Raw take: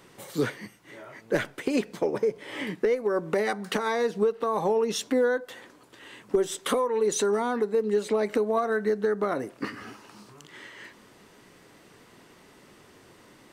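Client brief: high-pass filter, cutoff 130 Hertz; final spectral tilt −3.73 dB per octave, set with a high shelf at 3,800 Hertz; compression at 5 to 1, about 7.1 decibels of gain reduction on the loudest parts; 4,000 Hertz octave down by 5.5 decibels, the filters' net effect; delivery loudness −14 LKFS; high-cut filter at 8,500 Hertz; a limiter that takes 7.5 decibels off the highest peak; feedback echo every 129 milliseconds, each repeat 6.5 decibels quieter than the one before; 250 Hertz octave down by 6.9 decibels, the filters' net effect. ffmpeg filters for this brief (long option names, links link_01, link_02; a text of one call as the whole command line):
ffmpeg -i in.wav -af "highpass=130,lowpass=8500,equalizer=frequency=250:width_type=o:gain=-8.5,highshelf=frequency=3800:gain=-4,equalizer=frequency=4000:width_type=o:gain=-4.5,acompressor=threshold=-30dB:ratio=5,alimiter=level_in=2dB:limit=-24dB:level=0:latency=1,volume=-2dB,aecho=1:1:129|258|387|516|645|774:0.473|0.222|0.105|0.0491|0.0231|0.0109,volume=22dB" out.wav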